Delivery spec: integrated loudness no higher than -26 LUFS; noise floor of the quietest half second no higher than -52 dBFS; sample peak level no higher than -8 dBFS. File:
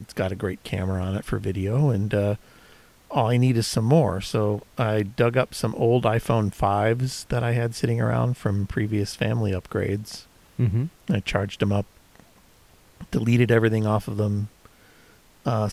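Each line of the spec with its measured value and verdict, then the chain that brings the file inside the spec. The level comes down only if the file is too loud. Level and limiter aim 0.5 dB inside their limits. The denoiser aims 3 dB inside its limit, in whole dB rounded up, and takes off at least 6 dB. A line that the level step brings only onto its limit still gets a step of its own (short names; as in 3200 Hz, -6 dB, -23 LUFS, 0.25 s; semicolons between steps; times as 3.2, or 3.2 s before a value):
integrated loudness -24.0 LUFS: fail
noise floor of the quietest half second -55 dBFS: OK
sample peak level -6.0 dBFS: fail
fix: gain -2.5 dB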